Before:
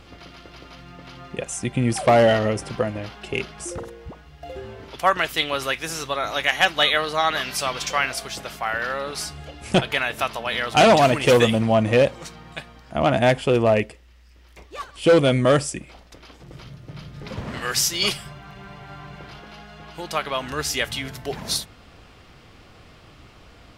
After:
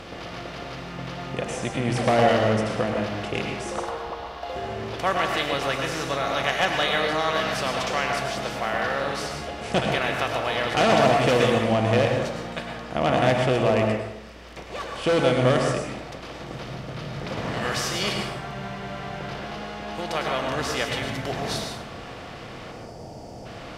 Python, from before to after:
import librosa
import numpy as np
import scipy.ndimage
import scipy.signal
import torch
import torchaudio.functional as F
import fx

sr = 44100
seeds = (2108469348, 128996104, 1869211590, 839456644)

y = fx.bin_compress(x, sr, power=0.6)
y = fx.graphic_eq(y, sr, hz=(125, 250, 1000, 2000, 4000, 8000), db=(-10, -7, 8, -3, 5, -6), at=(3.72, 4.53))
y = fx.spec_box(y, sr, start_s=22.72, length_s=0.74, low_hz=960.0, high_hz=4400.0, gain_db=-15)
y = fx.high_shelf(y, sr, hz=8700.0, db=-12.0)
y = fx.rev_plate(y, sr, seeds[0], rt60_s=0.91, hf_ratio=0.5, predelay_ms=90, drr_db=1.5)
y = F.gain(torch.from_numpy(y), -8.5).numpy()